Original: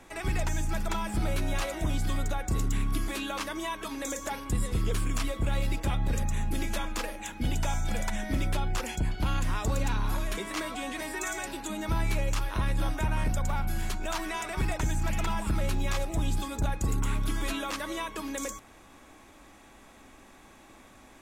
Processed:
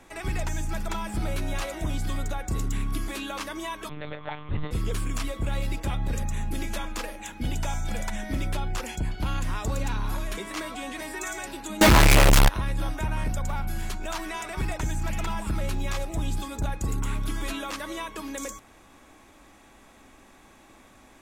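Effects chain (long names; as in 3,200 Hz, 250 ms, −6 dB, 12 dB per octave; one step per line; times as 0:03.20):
0:03.89–0:04.71: one-pitch LPC vocoder at 8 kHz 150 Hz
0:11.81–0:12.49: fuzz pedal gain 52 dB, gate −52 dBFS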